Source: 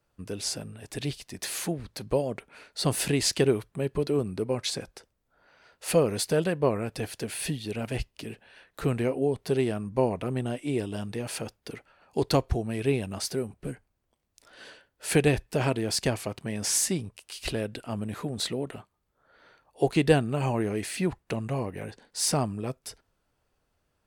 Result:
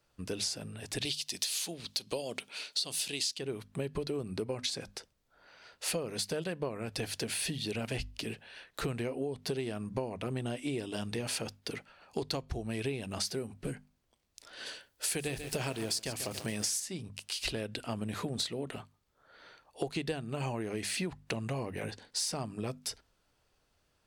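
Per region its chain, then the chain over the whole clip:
0:01.05–0:03.39: high-pass filter 300 Hz 6 dB per octave + high shelf with overshoot 2,400 Hz +8 dB, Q 1.5
0:14.66–0:16.80: high-shelf EQ 6,400 Hz +11 dB + feedback echo at a low word length 140 ms, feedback 55%, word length 6 bits, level −13 dB
whole clip: parametric band 4,500 Hz +6.5 dB 1.9 octaves; mains-hum notches 50/100/150/200/250 Hz; downward compressor 16 to 1, threshold −31 dBFS

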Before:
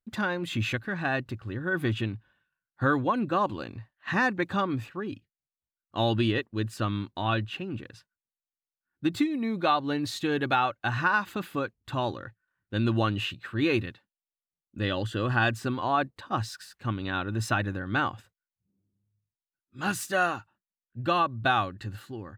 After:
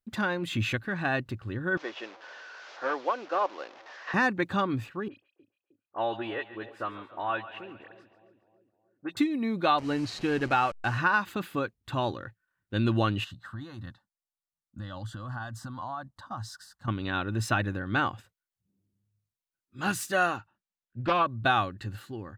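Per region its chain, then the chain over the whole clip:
0:01.77–0:04.14: linear delta modulator 32 kbit/s, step −37.5 dBFS + high-pass filter 510 Hz 24 dB per octave + spectral tilt −3 dB per octave
0:05.08–0:09.17: three-way crossover with the lows and the highs turned down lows −21 dB, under 410 Hz, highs −22 dB, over 2,400 Hz + all-pass dispersion highs, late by 48 ms, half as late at 2,900 Hz + echo with a time of its own for lows and highs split 620 Hz, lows 310 ms, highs 139 ms, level −14 dB
0:09.78–0:10.98: hold until the input has moved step −37.5 dBFS + low-pass filter 5,700 Hz + notch filter 3,500 Hz, Q 7.4
0:13.24–0:16.88: downward compressor 10 to 1, threshold −30 dBFS + high-shelf EQ 12,000 Hz −9.5 dB + phaser with its sweep stopped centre 1,000 Hz, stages 4
0:20.37–0:21.26: high-frequency loss of the air 70 metres + highs frequency-modulated by the lows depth 0.33 ms
whole clip: no processing

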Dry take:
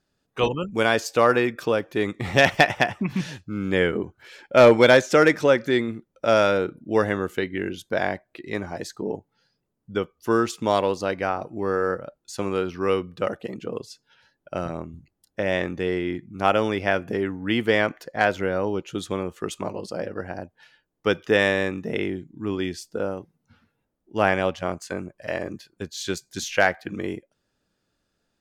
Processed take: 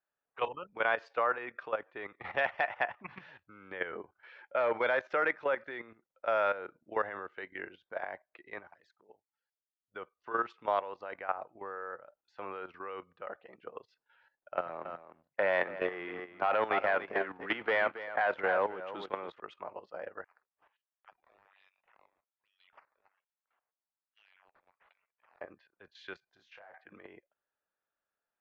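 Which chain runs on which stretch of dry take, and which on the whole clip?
0:08.67–0:09.94: flanger swept by the level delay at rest 3.6 ms, full sweep at −26 dBFS + first-order pre-emphasis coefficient 0.8
0:14.57–0:19.40: high-pass filter 110 Hz 24 dB per octave + leveller curve on the samples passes 2 + single-tap delay 280 ms −9.5 dB
0:20.24–0:25.41: inverse Chebyshev high-pass filter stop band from 1,200 Hz, stop band 50 dB + sample-and-hold swept by an LFO 10× 1.2 Hz + downward compressor 2.5 to 1, threshold −52 dBFS
0:26.29–0:26.74: parametric band 2,200 Hz −9 dB 1.3 octaves + downward compressor 16 to 1, threshold −35 dBFS + double-tracking delay 29 ms −4.5 dB
whole clip: three-way crossover with the lows and the highs turned down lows −22 dB, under 580 Hz, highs −22 dB, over 2,300 Hz; output level in coarse steps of 13 dB; low-pass filter 4,600 Hz 24 dB per octave; level −2 dB

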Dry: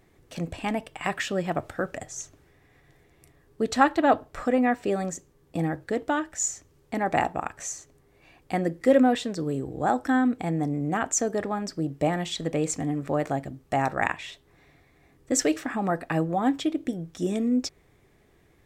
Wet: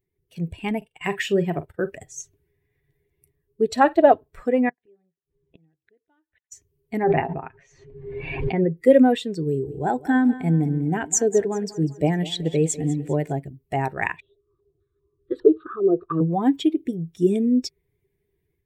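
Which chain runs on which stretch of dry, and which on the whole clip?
0:00.77–0:01.90: noise gate −41 dBFS, range −12 dB + double-tracking delay 45 ms −10.5 dB
0:03.71–0:04.12: parametric band 620 Hz +12 dB 0.29 octaves + flutter between parallel walls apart 8.9 metres, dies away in 0.22 s
0:04.69–0:06.52: gate with flip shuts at −30 dBFS, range −29 dB + linear-phase brick-wall low-pass 4,100 Hz + feedback echo with a high-pass in the loop 89 ms, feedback 70%, high-pass 540 Hz, level −21 dB
0:07.03–0:08.77: high-frequency loss of the air 320 metres + comb filter 7.5 ms, depth 43% + background raised ahead of every attack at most 29 dB per second
0:09.46–0:13.33: notch filter 1,200 Hz, Q 7.2 + feedback echo with a high-pass in the loop 197 ms, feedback 57%, high-pass 160 Hz, level −11 dB
0:14.20–0:16.21: drawn EQ curve 120 Hz 0 dB, 170 Hz −8 dB, 240 Hz −17 dB, 360 Hz +6 dB, 840 Hz −22 dB, 1,200 Hz +2 dB, 2,000 Hz −20 dB, 3,900 Hz +14 dB, 6,200 Hz −22 dB, 11,000 Hz +5 dB + low-pass on a step sequencer 5 Hz 650–1,800 Hz
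whole clip: spectral dynamics exaggerated over time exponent 1.5; automatic gain control gain up to 7 dB; thirty-one-band graphic EQ 160 Hz +5 dB, 400 Hz +10 dB, 1,250 Hz −7 dB, 5,000 Hz −4 dB; level −1 dB

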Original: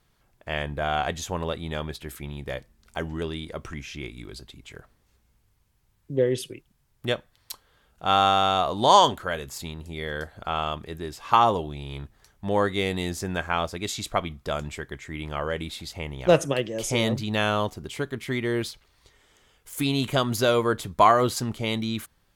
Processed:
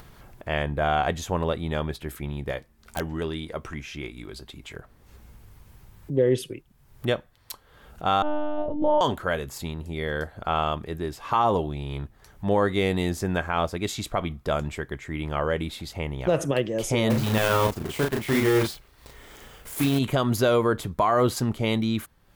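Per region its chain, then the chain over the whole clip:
0:02.51–0:04.75: low-shelf EQ 350 Hz −5.5 dB + double-tracking delay 13 ms −13.5 dB + wrap-around overflow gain 19.5 dB
0:08.22–0:09.01: moving average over 37 samples + one-pitch LPC vocoder at 8 kHz 300 Hz
0:17.10–0:19.99: one scale factor per block 3 bits + double-tracking delay 36 ms −2.5 dB
whole clip: parametric band 6,000 Hz −6.5 dB 2.8 octaves; brickwall limiter −16 dBFS; upward compression, threshold −39 dBFS; level +4 dB

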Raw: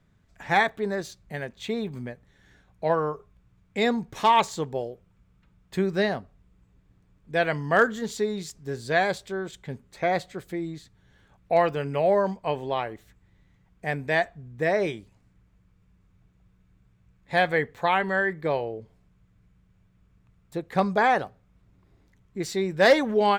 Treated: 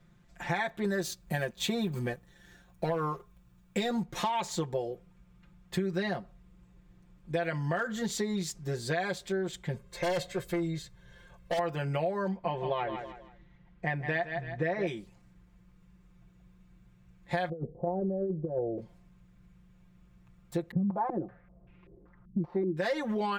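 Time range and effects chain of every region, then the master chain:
0:00.84–0:04.03: high-shelf EQ 9,300 Hz +12 dB + notch filter 2,100 Hz, Q 15 + leveller curve on the samples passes 1
0:09.74–0:11.59: comb filter 1.9 ms, depth 76% + gain into a clipping stage and back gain 28.5 dB
0:12.28–0:14.87: low-pass filter 3,500 Hz + repeating echo 162 ms, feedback 32%, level −12.5 dB
0:17.49–0:18.78: Butterworth low-pass 620 Hz + compressor whose output falls as the input rises −30 dBFS, ratio −0.5
0:20.71–0:22.77: gap after every zero crossing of 0.063 ms + low-pass on a step sequencer 5.2 Hz 220–2,600 Hz
whole clip: brickwall limiter −16.5 dBFS; comb filter 5.7 ms, depth 94%; downward compressor 6 to 1, threshold −28 dBFS

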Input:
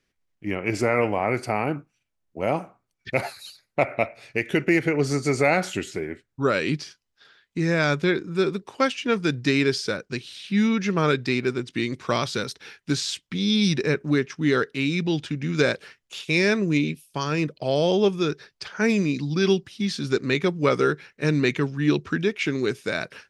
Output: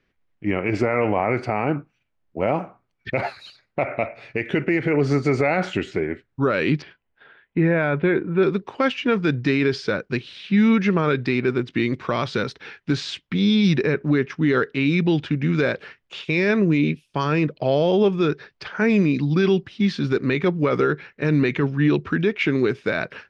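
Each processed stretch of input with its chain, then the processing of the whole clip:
0:06.82–0:08.43: low-pass filter 3,000 Hz 24 dB per octave + parametric band 650 Hz +3 dB 1.7 octaves + notch filter 1,200 Hz, Q 10
whole clip: low-pass filter 2,800 Hz 12 dB per octave; brickwall limiter −16 dBFS; level +6 dB

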